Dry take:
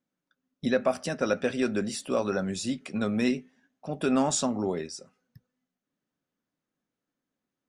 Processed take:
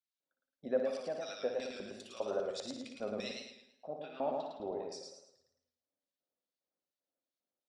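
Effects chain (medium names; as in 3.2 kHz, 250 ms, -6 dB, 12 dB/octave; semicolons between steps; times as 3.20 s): peaking EQ 85 Hz +12 dB 0.3 oct; LFO band-pass square 2.5 Hz 610–4200 Hz; 3.87–4.92 s: distance through air 450 m; on a send: flutter echo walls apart 10.1 m, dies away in 0.48 s; on the sum: modulated delay 108 ms, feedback 38%, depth 75 cents, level -3.5 dB; trim -3 dB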